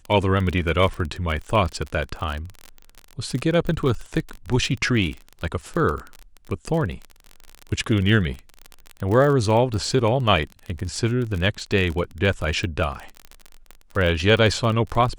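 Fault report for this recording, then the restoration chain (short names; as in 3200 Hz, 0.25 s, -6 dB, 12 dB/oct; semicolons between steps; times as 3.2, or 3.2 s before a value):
crackle 34/s -26 dBFS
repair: de-click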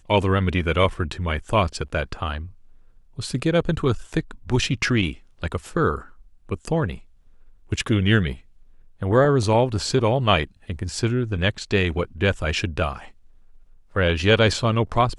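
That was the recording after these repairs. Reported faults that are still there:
none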